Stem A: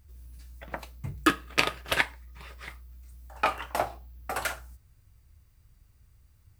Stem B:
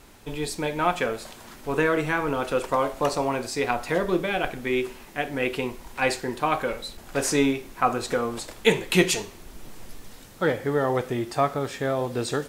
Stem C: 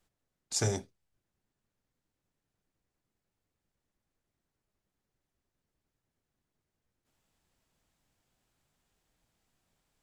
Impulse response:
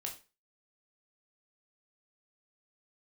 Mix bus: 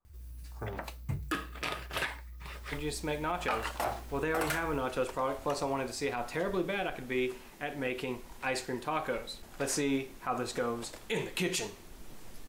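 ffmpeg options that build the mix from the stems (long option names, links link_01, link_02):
-filter_complex "[0:a]adelay=50,volume=1.5dB[link_01];[1:a]adelay=2450,volume=-6.5dB[link_02];[2:a]lowpass=frequency=1100:width_type=q:width=4.9,volume=-10.5dB[link_03];[link_01][link_02][link_03]amix=inputs=3:normalize=0,alimiter=limit=-21.5dB:level=0:latency=1:release=64"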